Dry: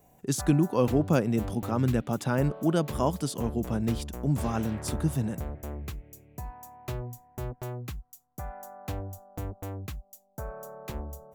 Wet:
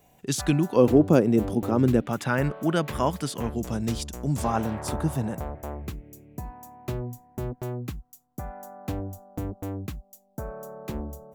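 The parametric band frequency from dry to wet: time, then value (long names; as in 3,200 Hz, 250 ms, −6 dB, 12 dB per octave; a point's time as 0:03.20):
parametric band +9 dB 1.6 octaves
3,100 Hz
from 0:00.76 360 Hz
from 0:02.06 1,900 Hz
from 0:03.56 6,200 Hz
from 0:04.44 860 Hz
from 0:05.87 250 Hz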